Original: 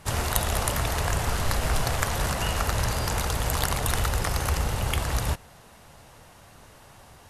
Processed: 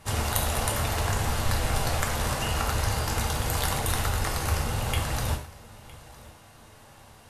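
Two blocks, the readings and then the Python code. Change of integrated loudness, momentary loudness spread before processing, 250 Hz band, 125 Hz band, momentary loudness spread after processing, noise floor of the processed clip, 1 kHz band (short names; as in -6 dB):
-1.0 dB, 2 LU, -0.5 dB, -0.5 dB, 9 LU, -52 dBFS, -0.5 dB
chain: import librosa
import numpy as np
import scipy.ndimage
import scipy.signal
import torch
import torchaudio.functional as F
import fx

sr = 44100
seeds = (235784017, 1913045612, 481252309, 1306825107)

p1 = x + fx.echo_single(x, sr, ms=960, db=-21.0, dry=0)
p2 = fx.rev_gated(p1, sr, seeds[0], gate_ms=150, shape='falling', drr_db=1.0)
y = F.gain(torch.from_numpy(p2), -3.5).numpy()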